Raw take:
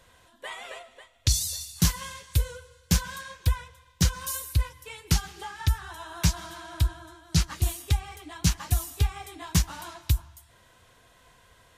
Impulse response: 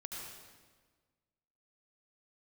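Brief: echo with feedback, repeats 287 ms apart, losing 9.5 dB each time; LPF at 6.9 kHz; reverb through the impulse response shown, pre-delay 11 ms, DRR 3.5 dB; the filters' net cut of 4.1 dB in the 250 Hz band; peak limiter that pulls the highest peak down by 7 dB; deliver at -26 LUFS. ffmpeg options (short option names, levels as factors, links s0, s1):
-filter_complex "[0:a]lowpass=6900,equalizer=f=250:t=o:g=-8.5,alimiter=limit=0.126:level=0:latency=1,aecho=1:1:287|574|861|1148:0.335|0.111|0.0365|0.012,asplit=2[s0][s1];[1:a]atrim=start_sample=2205,adelay=11[s2];[s1][s2]afir=irnorm=-1:irlink=0,volume=0.75[s3];[s0][s3]amix=inputs=2:normalize=0,volume=2"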